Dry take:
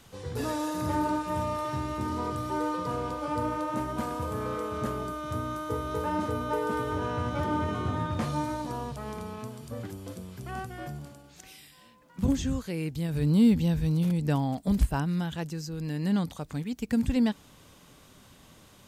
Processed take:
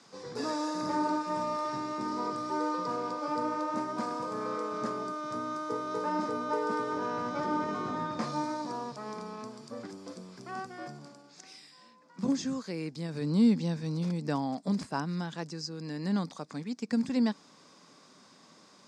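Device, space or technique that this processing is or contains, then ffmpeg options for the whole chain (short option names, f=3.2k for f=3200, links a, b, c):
television speaker: -af "highpass=f=180:w=0.5412,highpass=f=180:w=1.3066,equalizer=f=1.1k:t=q:w=4:g=4,equalizer=f=3k:t=q:w=4:g=-8,equalizer=f=5k:t=q:w=4:g=9,lowpass=f=7.8k:w=0.5412,lowpass=f=7.8k:w=1.3066,volume=-2dB"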